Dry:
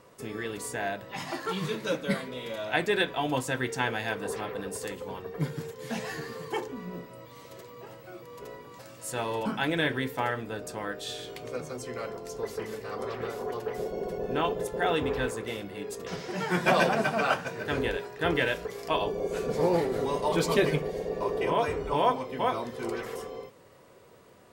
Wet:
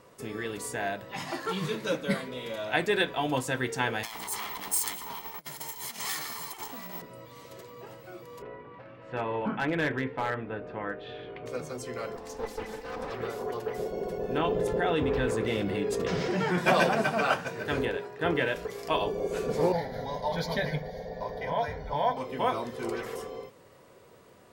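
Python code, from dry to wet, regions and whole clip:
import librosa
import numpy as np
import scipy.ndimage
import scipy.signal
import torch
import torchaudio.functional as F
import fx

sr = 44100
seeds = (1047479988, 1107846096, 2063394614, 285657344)

y = fx.chain(x, sr, fx.lower_of_two(delay_ms=0.96),
    fx.over_compress(threshold_db=-38.0, ratio=-0.5),
    fx.riaa(side='recording'), at=(4.03, 7.02))
y = fx.chain(y, sr, fx.lowpass(hz=2600.0, slope=24),
    fx.clip_hard(threshold_db=-21.5), at=(8.42, 11.46))
y = fx.chain(y, sr, fx.lower_of_two(delay_ms=4.0),
    fx.high_shelf(hz=12000.0, db=-8.0), at=(12.16, 13.12))
y = fx.chain(y, sr, fx.lowpass(hz=2500.0, slope=6),
    fx.peak_eq(hz=970.0, db=-4.0, octaves=2.0),
    fx.env_flatten(amount_pct=70), at=(14.38, 16.58))
y = fx.chain(y, sr, fx.highpass(hz=88.0, slope=12),
    fx.high_shelf(hz=3200.0, db=-8.0), at=(17.85, 18.56))
y = fx.chain(y, sr, fx.high_shelf(hz=7200.0, db=-5.0),
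    fx.fixed_phaser(hz=1800.0, stages=8), at=(19.72, 22.17))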